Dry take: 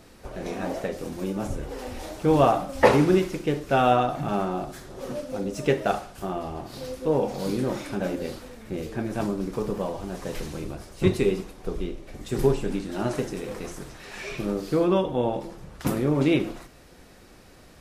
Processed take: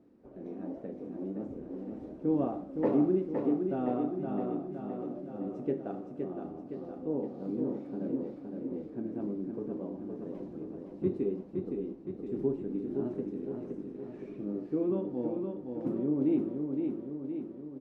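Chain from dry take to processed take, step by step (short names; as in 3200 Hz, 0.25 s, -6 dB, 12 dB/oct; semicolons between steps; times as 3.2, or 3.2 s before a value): band-pass 280 Hz, Q 2.2; on a send: feedback echo 0.516 s, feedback 59%, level -5 dB; on the sum: gain -4 dB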